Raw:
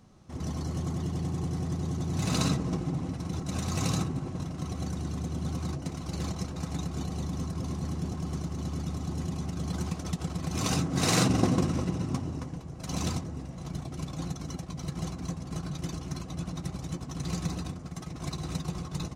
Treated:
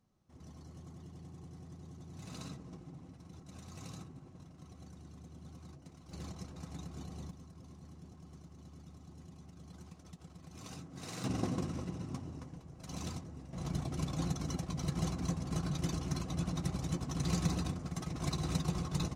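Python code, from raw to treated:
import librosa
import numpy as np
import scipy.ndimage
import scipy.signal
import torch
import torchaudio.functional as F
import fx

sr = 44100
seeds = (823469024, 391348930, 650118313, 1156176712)

y = fx.gain(x, sr, db=fx.steps((0.0, -19.0), (6.11, -12.0), (7.31, -20.0), (11.24, -10.5), (13.53, -0.5)))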